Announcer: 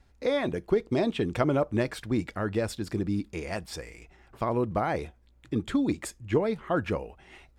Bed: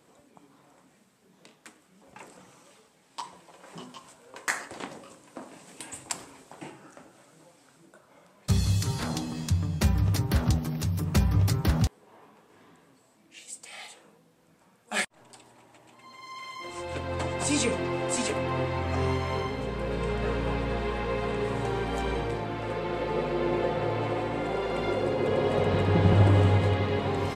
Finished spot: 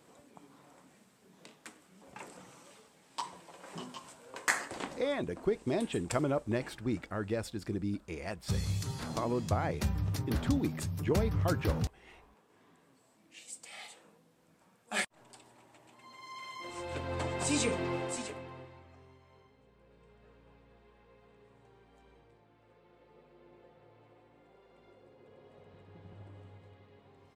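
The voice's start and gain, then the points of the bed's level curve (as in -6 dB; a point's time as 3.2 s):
4.75 s, -6.0 dB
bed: 4.77 s -0.5 dB
5.31 s -8.5 dB
12.61 s -8.5 dB
13.1 s -4.5 dB
17.95 s -4.5 dB
19.06 s -32 dB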